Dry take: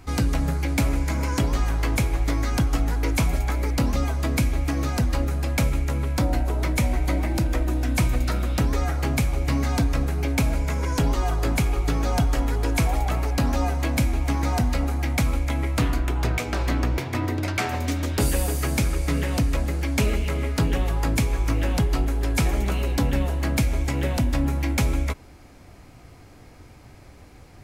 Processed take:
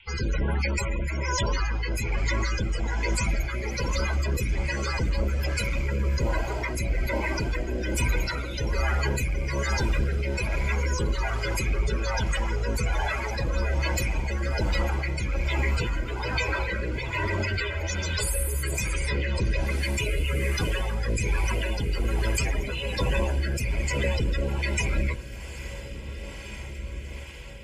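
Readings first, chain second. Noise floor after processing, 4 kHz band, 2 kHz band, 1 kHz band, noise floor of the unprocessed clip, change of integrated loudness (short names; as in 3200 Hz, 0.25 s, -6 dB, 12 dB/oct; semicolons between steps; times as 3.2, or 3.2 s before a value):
-37 dBFS, 0.0 dB, +2.0 dB, -3.5 dB, -47 dBFS, -3.5 dB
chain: minimum comb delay 2 ms; tilt shelf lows -8 dB, about 1200 Hz; notches 60/120/180/240/300/360 Hz; in parallel at -7.5 dB: fuzz box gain 41 dB, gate -41 dBFS; on the sum: loudest bins only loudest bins 32; on a send: diffused feedback echo 1.823 s, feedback 58%, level -12.5 dB; on the sum: band noise 2100–3300 Hz -49 dBFS; rotary speaker horn 1.2 Hz; gain -3 dB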